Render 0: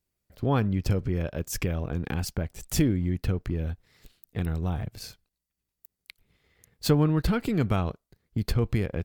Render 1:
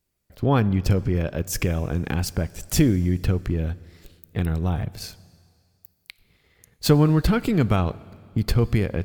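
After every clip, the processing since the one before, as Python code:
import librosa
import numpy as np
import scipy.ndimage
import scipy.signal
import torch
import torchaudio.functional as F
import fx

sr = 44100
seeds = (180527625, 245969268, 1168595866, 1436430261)

y = fx.rev_plate(x, sr, seeds[0], rt60_s=2.2, hf_ratio=1.0, predelay_ms=0, drr_db=19.0)
y = y * librosa.db_to_amplitude(5.0)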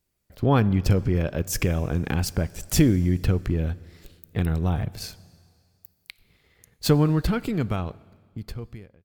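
y = fx.fade_out_tail(x, sr, length_s=2.73)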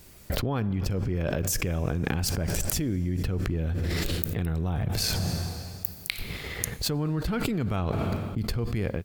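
y = fx.env_flatten(x, sr, amount_pct=100)
y = y * librosa.db_to_amplitude(-14.0)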